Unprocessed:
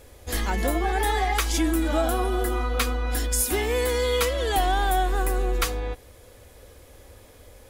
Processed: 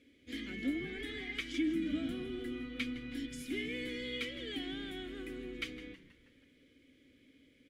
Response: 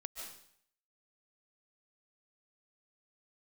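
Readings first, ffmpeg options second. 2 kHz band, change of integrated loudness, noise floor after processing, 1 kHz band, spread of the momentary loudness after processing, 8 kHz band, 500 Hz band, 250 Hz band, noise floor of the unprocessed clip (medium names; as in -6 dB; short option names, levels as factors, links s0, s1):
-12.0 dB, -14.5 dB, -67 dBFS, -32.5 dB, 9 LU, -27.0 dB, -18.0 dB, -7.0 dB, -50 dBFS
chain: -filter_complex "[0:a]asplit=3[s0][s1][s2];[s0]bandpass=f=270:t=q:w=8,volume=1[s3];[s1]bandpass=f=2290:t=q:w=8,volume=0.501[s4];[s2]bandpass=f=3010:t=q:w=8,volume=0.355[s5];[s3][s4][s5]amix=inputs=3:normalize=0,asplit=6[s6][s7][s8][s9][s10][s11];[s7]adelay=160,afreqshift=-120,volume=0.158[s12];[s8]adelay=320,afreqshift=-240,volume=0.0822[s13];[s9]adelay=480,afreqshift=-360,volume=0.0427[s14];[s10]adelay=640,afreqshift=-480,volume=0.0224[s15];[s11]adelay=800,afreqshift=-600,volume=0.0116[s16];[s6][s12][s13][s14][s15][s16]amix=inputs=6:normalize=0,asplit=2[s17][s18];[1:a]atrim=start_sample=2205[s19];[s18][s19]afir=irnorm=-1:irlink=0,volume=0.2[s20];[s17][s20]amix=inputs=2:normalize=0"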